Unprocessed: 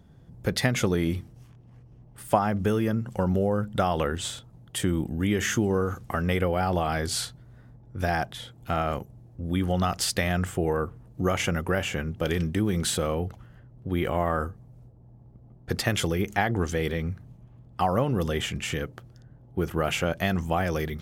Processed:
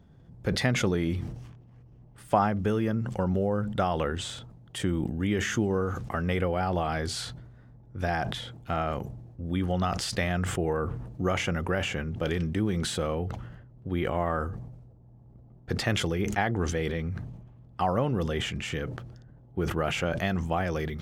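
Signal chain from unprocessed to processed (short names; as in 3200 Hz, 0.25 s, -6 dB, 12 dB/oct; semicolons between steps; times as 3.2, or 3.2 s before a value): bell 14000 Hz -12 dB 1.1 oct; sustainer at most 49 dB/s; gain -2.5 dB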